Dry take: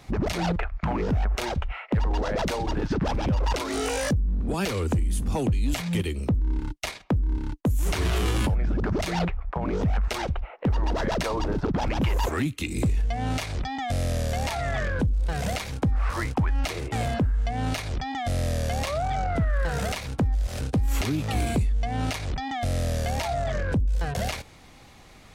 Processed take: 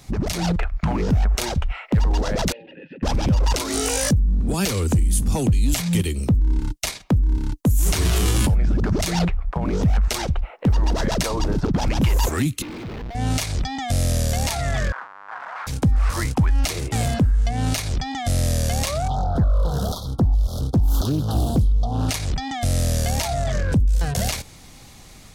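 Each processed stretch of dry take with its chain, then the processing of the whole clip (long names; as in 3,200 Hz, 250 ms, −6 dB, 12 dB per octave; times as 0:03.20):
0:02.52–0:03.03: formant filter e + loudspeaker in its box 160–3,300 Hz, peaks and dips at 160 Hz +9 dB, 250 Hz +5 dB, 440 Hz −6 dB, 670 Hz −9 dB, 1,200 Hz −6 dB, 2,500 Hz +10 dB + notch filter 2,300 Hz, Q 11
0:12.62–0:13.15: high-pass filter 340 Hz + comparator with hysteresis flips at −44.5 dBFS + high-frequency loss of the air 310 metres
0:14.92–0:15.67: comparator with hysteresis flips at −41.5 dBFS + flat-topped band-pass 1,200 Hz, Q 1.7
0:19.08–0:22.09: linear-phase brick-wall band-stop 1,400–3,200 Hz + parametric band 7,900 Hz −14.5 dB 0.94 octaves + highs frequency-modulated by the lows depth 0.5 ms
whole clip: bass and treble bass +7 dB, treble +11 dB; automatic gain control gain up to 3 dB; parametric band 69 Hz −3 dB 1.6 octaves; level −1.5 dB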